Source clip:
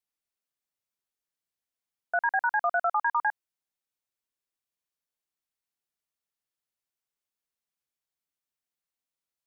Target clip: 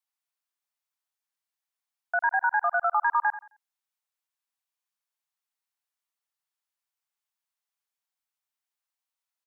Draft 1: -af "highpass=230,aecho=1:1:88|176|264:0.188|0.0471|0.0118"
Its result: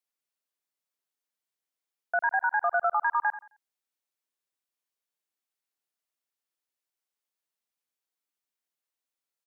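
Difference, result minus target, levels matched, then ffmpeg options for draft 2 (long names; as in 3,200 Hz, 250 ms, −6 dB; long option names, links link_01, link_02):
500 Hz band +3.0 dB
-af "highpass=230,lowshelf=frequency=580:width_type=q:width=1.5:gain=-12,aecho=1:1:88|176|264:0.188|0.0471|0.0118"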